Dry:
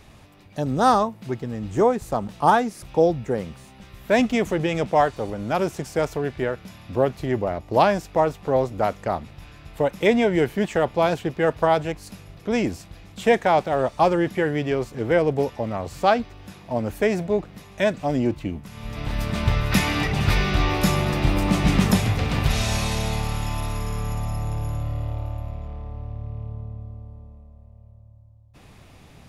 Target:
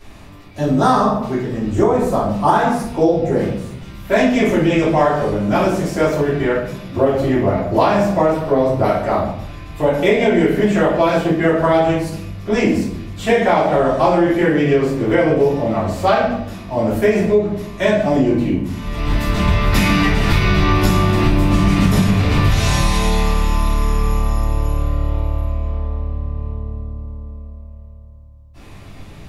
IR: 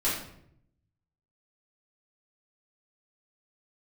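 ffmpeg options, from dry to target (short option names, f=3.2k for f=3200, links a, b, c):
-filter_complex "[1:a]atrim=start_sample=2205[a];[0:a][a]afir=irnorm=-1:irlink=0,acompressor=threshold=-9dB:ratio=5,asettb=1/sr,asplit=3[b][c][d];[b]atrim=end=8.344[e];[c]atrim=start=8.34:end=9.11,asetpts=PTS-STARTPTS,afade=t=in:d=0.004:c=qsin,afade=t=out:st=0.766:d=0.004:c=qsin,bandreject=f=6.9k:w=7.5[f];[d]atrim=start=9.106[g];[e][f]acrossfade=d=0.004:c1=hsin:c2=qsin[h];[h][g]acrossfade=d=0.004:c1=qsin:c2=hsin,volume=-1dB"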